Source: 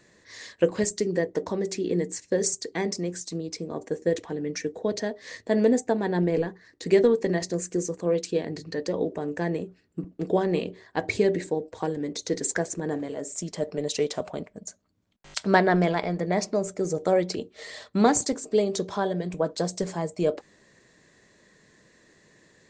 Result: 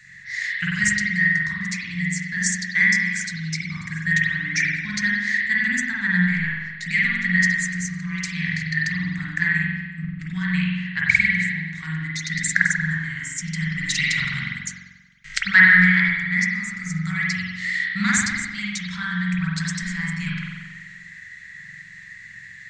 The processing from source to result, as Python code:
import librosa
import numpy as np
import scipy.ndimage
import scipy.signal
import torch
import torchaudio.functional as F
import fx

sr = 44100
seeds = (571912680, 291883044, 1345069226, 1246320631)

y = scipy.signal.sosfilt(scipy.signal.cheby1(3, 1.0, [160.0, 1500.0], 'bandstop', fs=sr, output='sos'), x)
y = fx.rev_spring(y, sr, rt60_s=1.3, pass_ms=(44,), chirp_ms=50, drr_db=-5.0)
y = fx.rider(y, sr, range_db=10, speed_s=2.0)
y = fx.peak_eq(y, sr, hz=2000.0, db=14.5, octaves=0.4)
y = y * librosa.db_to_amplitude(2.5)